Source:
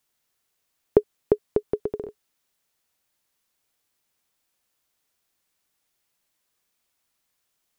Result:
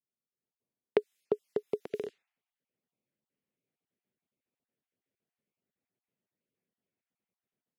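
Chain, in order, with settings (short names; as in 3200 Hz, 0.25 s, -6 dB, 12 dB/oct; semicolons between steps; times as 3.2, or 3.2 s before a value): random spectral dropouts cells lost 25%; low-pass opened by the level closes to 320 Hz, open at -27.5 dBFS; resonant high shelf 1600 Hz +7 dB, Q 1.5, from 1.91 s +13 dB; AGC gain up to 14 dB; HPF 190 Hz 12 dB/oct; bell 310 Hz -8 dB 0.22 oct; gain -8 dB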